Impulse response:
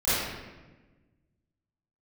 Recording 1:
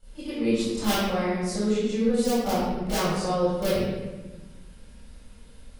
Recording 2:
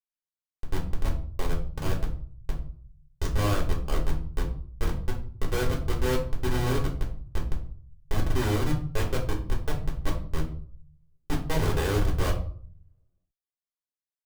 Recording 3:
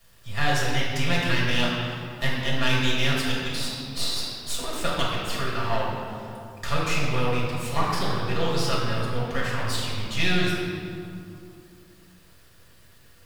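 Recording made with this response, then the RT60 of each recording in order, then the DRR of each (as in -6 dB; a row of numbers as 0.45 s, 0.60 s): 1; 1.2 s, 0.50 s, 2.6 s; -17.0 dB, -2.5 dB, -6.5 dB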